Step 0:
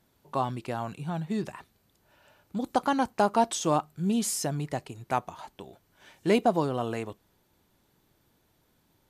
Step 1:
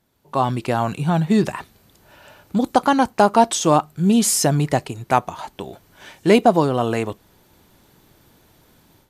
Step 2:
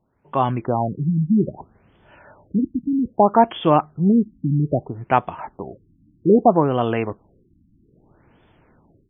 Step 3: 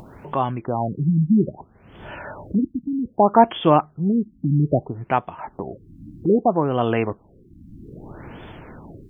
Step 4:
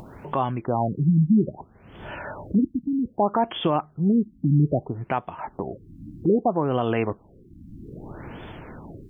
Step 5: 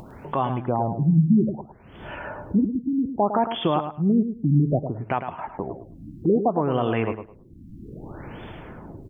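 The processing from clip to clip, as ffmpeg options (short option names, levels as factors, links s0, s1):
-af "dynaudnorm=f=250:g=3:m=5.01"
-af "afftfilt=real='re*lt(b*sr/1024,300*pow(3600/300,0.5+0.5*sin(2*PI*0.62*pts/sr)))':imag='im*lt(b*sr/1024,300*pow(3600/300,0.5+0.5*sin(2*PI*0.62*pts/sr)))':win_size=1024:overlap=0.75"
-af "tremolo=f=0.85:d=0.49,acompressor=mode=upward:threshold=0.0562:ratio=2.5,volume=1.19"
-af "alimiter=limit=0.266:level=0:latency=1:release=182"
-af "aecho=1:1:106|212|318:0.355|0.071|0.0142"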